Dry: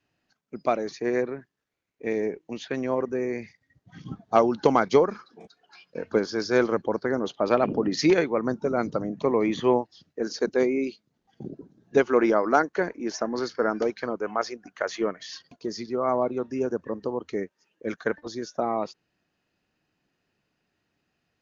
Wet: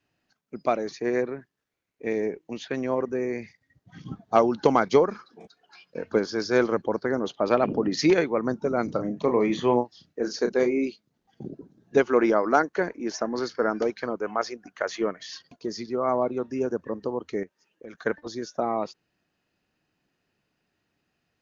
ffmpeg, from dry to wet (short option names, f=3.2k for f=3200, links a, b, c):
-filter_complex "[0:a]asettb=1/sr,asplit=3[a][b][c];[a]atrim=end=8.854[d];[b]atrim=start=8.85:end=10.86,asetpts=PTS-STARTPTS,afade=t=in:d=0.004:c=qsin,afade=t=out:st=2.006:d=0.004:c=qsin,asplit=2[e][f];[f]adelay=33,volume=-8dB[g];[e][g]amix=inputs=2:normalize=0,atrim=end_sample=88641[h];[c]atrim=start=10.856[i];[d][h]acrossfade=d=0.004:c1=hsin:c2=qsin[j];[j][i]acrossfade=d=0.004:c1=qsin:c2=hsin,asettb=1/sr,asplit=3[k][l][m];[k]atrim=end=17.434[n];[l]atrim=start=17.43:end=17.95,asetpts=PTS-STARTPTS,afade=t=in:d=0.004:c=qsin,afade=t=out:st=0.516:d=0.004:c=qsin,acompressor=threshold=-37dB:ratio=10:attack=3.2:release=140:knee=1:detection=peak[o];[m]atrim=start=17.946[p];[n][o]acrossfade=d=0.004:c1=hsin:c2=qsin[q];[q][p]acrossfade=d=0.004:c1=qsin:c2=hsin"